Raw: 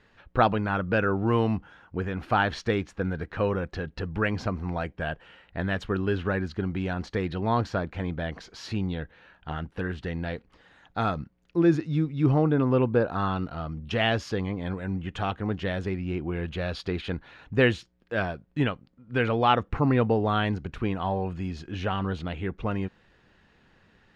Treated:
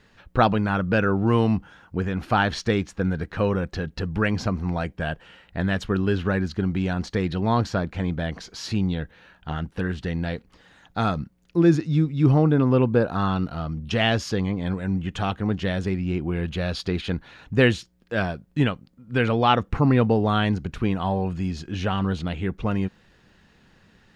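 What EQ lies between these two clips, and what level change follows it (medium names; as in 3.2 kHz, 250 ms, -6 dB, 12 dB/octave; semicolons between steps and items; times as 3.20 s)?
tone controls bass +2 dB, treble +8 dB; peaking EQ 190 Hz +3 dB 0.77 oct; +2.0 dB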